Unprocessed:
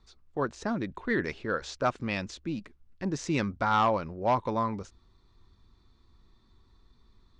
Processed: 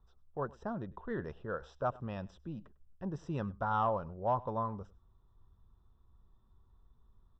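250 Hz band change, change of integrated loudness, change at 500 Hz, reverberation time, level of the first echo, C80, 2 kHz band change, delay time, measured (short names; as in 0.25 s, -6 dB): -9.5 dB, -7.0 dB, -6.0 dB, none, -22.5 dB, none, -13.5 dB, 0.1 s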